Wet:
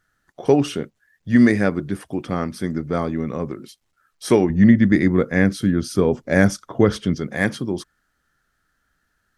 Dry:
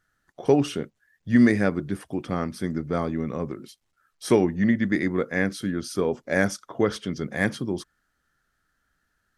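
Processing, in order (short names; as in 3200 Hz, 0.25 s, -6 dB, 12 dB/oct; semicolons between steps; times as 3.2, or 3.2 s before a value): 4.5–7.15 low shelf 220 Hz +11 dB; gain +3.5 dB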